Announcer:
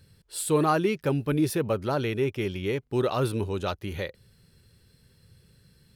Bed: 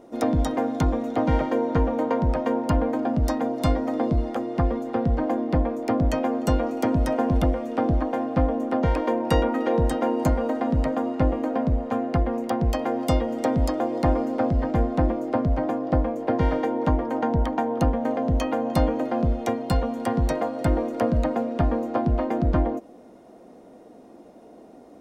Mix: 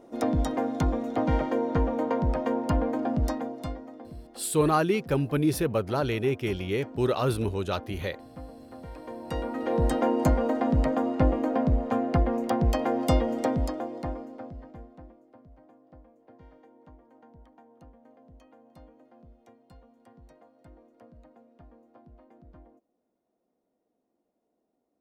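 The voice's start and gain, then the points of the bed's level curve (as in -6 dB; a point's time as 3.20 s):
4.05 s, 0.0 dB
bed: 3.24 s -3.5 dB
4.04 s -21 dB
8.85 s -21 dB
9.92 s -1 dB
13.33 s -1 dB
15.30 s -31 dB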